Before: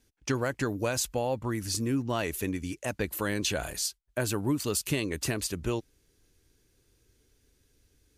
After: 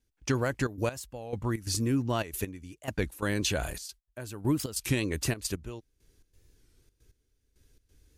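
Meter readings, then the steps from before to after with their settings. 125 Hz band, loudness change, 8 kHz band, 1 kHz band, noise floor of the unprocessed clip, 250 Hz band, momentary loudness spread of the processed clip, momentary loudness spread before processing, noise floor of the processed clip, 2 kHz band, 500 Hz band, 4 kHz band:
+1.5 dB, -1.0 dB, -3.5 dB, -2.0 dB, -70 dBFS, -0.5 dB, 12 LU, 4 LU, -76 dBFS, -1.0 dB, -2.0 dB, -2.0 dB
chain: step gate ".xxxxx.x....xx" 135 bpm -12 dB; low shelf 85 Hz +9 dB; record warp 33 1/3 rpm, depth 160 cents

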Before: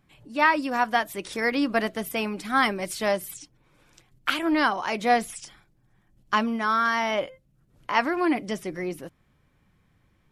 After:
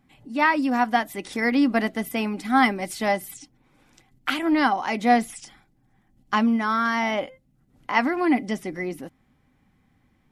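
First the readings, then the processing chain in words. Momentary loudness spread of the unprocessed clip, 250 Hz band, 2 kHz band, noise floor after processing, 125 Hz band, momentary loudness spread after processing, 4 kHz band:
12 LU, +5.0 dB, +0.5 dB, -65 dBFS, n/a, 12 LU, -1.0 dB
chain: small resonant body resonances 250/780/2000 Hz, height 11 dB, ringing for 55 ms; gain -1 dB

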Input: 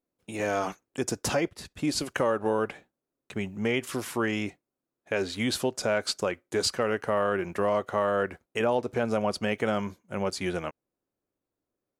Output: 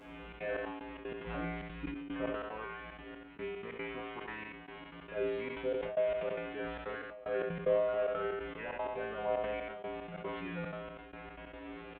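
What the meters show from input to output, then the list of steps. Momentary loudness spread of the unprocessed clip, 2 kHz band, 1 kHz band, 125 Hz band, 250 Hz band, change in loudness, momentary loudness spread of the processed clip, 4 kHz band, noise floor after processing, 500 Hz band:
8 LU, -9.0 dB, -10.0 dB, -11.0 dB, -12.0 dB, -9.0 dB, 14 LU, -17.0 dB, -51 dBFS, -7.0 dB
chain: delta modulation 16 kbps, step -34 dBFS; resonator 57 Hz, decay 1 s, harmonics odd, mix 100%; step gate "xxxx.xx...xx.x.x" 186 bpm -24 dB; on a send: echo 85 ms -13 dB; on the sum: sustainer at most 37 dB/s; gain +7.5 dB

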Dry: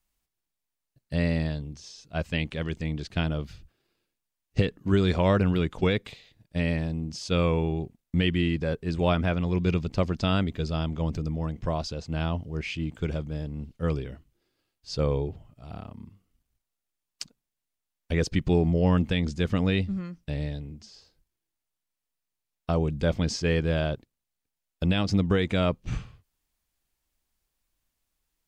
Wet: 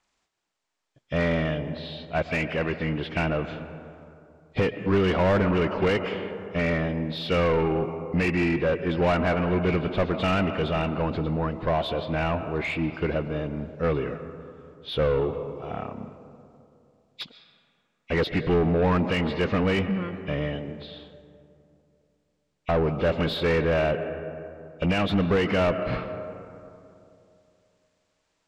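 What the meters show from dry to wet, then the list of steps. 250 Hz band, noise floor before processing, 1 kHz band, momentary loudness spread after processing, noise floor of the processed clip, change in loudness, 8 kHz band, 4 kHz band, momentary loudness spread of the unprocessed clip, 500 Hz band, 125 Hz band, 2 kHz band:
+1.0 dB, -85 dBFS, +6.0 dB, 15 LU, -74 dBFS, +2.0 dB, n/a, +1.0 dB, 13 LU, +5.0 dB, -1.5 dB, +5.5 dB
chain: nonlinear frequency compression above 1900 Hz 1.5:1; digital reverb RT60 2.7 s, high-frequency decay 0.4×, pre-delay 85 ms, DRR 14 dB; overdrive pedal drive 25 dB, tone 1300 Hz, clips at -10 dBFS; gain -3 dB

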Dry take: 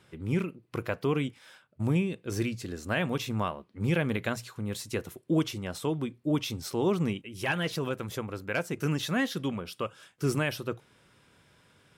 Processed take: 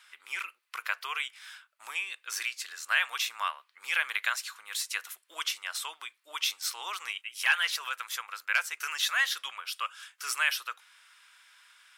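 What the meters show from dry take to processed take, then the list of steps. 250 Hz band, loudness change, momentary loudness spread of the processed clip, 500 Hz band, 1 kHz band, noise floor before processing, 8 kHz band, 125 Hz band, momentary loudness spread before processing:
under -40 dB, 0.0 dB, 12 LU, -22.5 dB, +1.0 dB, -64 dBFS, +7.0 dB, under -40 dB, 8 LU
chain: HPF 1200 Hz 24 dB/oct; gain +7 dB

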